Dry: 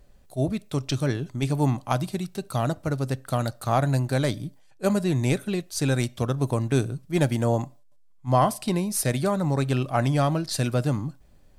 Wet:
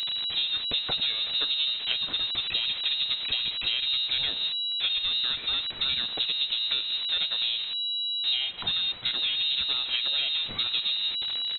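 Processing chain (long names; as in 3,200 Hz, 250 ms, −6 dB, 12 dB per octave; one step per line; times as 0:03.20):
converter with a step at zero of −27 dBFS
downward compressor 16 to 1, threshold −25 dBFS, peak gain reduction 12 dB
voice inversion scrambler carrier 3,900 Hz
pitch-shifted copies added −5 semitones −13 dB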